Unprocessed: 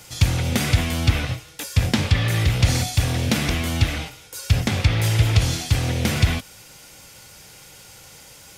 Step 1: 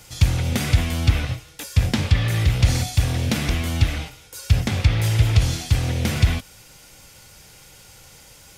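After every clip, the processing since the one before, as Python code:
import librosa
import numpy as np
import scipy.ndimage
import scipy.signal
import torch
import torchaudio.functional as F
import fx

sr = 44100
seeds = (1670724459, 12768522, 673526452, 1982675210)

y = fx.low_shelf(x, sr, hz=61.0, db=11.0)
y = y * librosa.db_to_amplitude(-2.5)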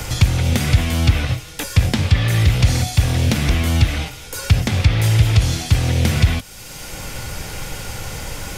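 y = fx.dmg_noise_colour(x, sr, seeds[0], colour='brown', level_db=-54.0)
y = fx.band_squash(y, sr, depth_pct=70)
y = y * librosa.db_to_amplitude(3.5)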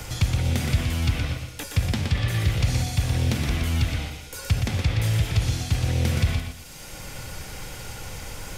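y = fx.echo_feedback(x, sr, ms=120, feedback_pct=29, wet_db=-6.0)
y = y * librosa.db_to_amplitude(-8.5)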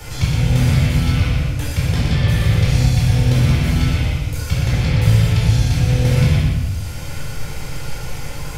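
y = fx.room_shoebox(x, sr, seeds[1], volume_m3=770.0, walls='mixed', distance_m=4.3)
y = y * librosa.db_to_amplitude(-3.5)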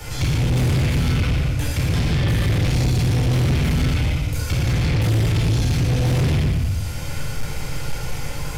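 y = np.clip(x, -10.0 ** (-15.5 / 20.0), 10.0 ** (-15.5 / 20.0))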